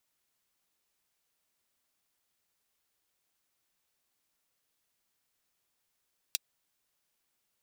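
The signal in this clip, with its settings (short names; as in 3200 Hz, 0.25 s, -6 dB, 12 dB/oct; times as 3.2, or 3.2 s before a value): closed hi-hat, high-pass 3400 Hz, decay 0.03 s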